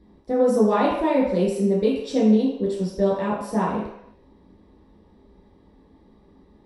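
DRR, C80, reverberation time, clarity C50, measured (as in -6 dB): -6.5 dB, 5.5 dB, 0.75 s, 2.5 dB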